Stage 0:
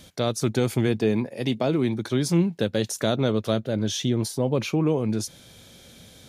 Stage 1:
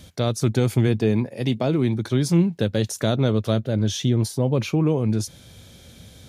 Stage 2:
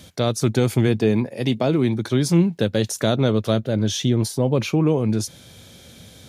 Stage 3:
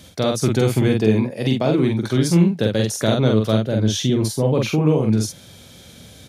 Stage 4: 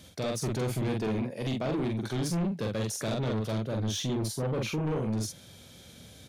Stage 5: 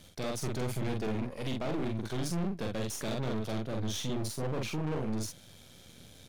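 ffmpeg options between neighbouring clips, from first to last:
-af "equalizer=f=75:t=o:w=1.9:g=9.5"
-af "highpass=f=130:p=1,volume=3dB"
-filter_complex "[0:a]asplit=2[a][b];[b]adelay=46,volume=-3dB[c];[a][c]amix=inputs=2:normalize=0"
-af "asoftclip=type=tanh:threshold=-18.5dB,volume=-7.5dB"
-af "aeval=exprs='if(lt(val(0),0),0.251*val(0),val(0))':c=same"

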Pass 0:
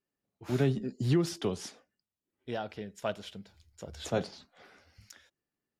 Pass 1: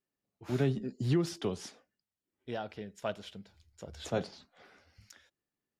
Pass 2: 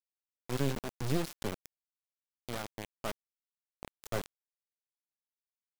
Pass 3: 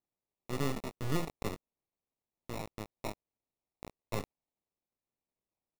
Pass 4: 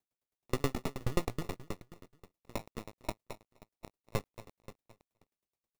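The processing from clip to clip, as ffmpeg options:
-af "highshelf=f=8.5k:g=-4,volume=-2dB"
-af "acrusher=bits=3:dc=4:mix=0:aa=0.000001"
-filter_complex "[0:a]asplit=2[a][b];[b]adelay=19,volume=-11dB[c];[a][c]amix=inputs=2:normalize=0,acrusher=samples=28:mix=1:aa=0.000001,volume=-1.5dB"
-filter_complex "[0:a]asplit=2[a][b];[b]aecho=0:1:257|514|771|1028:0.355|0.135|0.0512|0.0195[c];[a][c]amix=inputs=2:normalize=0,aeval=exprs='val(0)*pow(10,-37*if(lt(mod(9.4*n/s,1),2*abs(9.4)/1000),1-mod(9.4*n/s,1)/(2*abs(9.4)/1000),(mod(9.4*n/s,1)-2*abs(9.4)/1000)/(1-2*abs(9.4)/1000))/20)':c=same,volume=8.5dB"

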